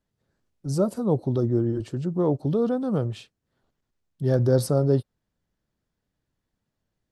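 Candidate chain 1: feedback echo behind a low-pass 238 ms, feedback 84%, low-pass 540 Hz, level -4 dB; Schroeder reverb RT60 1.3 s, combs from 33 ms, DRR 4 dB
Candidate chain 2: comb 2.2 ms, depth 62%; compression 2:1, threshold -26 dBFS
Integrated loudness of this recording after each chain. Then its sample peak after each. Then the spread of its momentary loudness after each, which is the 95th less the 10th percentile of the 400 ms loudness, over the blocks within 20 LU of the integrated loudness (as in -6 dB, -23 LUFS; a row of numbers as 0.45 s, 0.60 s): -22.0 LUFS, -28.0 LUFS; -5.5 dBFS, -14.5 dBFS; 11 LU, 6 LU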